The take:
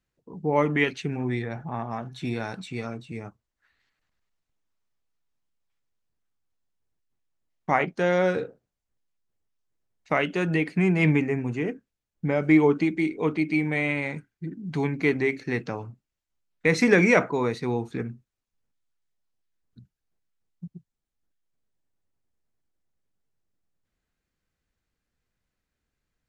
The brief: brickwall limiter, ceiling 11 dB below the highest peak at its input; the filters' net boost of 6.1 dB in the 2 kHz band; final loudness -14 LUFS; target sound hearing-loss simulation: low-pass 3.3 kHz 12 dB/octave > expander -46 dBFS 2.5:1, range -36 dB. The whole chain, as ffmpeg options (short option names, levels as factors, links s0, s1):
-af "equalizer=f=2000:t=o:g=7.5,alimiter=limit=0.224:level=0:latency=1,lowpass=3300,agate=range=0.0158:threshold=0.00501:ratio=2.5,volume=3.98"